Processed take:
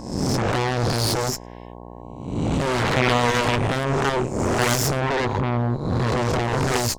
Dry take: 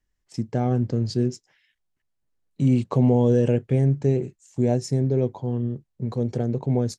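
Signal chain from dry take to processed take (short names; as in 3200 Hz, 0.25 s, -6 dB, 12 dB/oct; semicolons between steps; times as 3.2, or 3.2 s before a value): spectral swells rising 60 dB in 0.99 s; dynamic EQ 200 Hz, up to -7 dB, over -32 dBFS, Q 0.79; in parallel at -4 dB: sine folder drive 18 dB, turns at -9.5 dBFS; on the sum: added harmonics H 2 -6 dB, 3 -16 dB, 7 -31 dB, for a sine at -7 dBFS; buzz 60 Hz, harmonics 18, -35 dBFS -2 dB/oct; gain -4 dB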